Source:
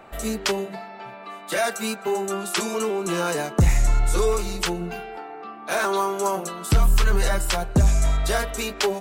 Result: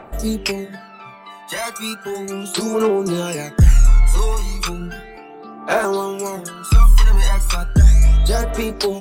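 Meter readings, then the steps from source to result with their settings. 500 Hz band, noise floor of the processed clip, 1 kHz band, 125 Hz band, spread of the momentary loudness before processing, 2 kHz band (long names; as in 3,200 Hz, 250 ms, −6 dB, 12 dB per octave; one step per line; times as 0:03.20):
+2.5 dB, −39 dBFS, +0.5 dB, +7.0 dB, 15 LU, +0.5 dB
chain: phase shifter 0.35 Hz, delay 1.1 ms, feedback 70%
level −1 dB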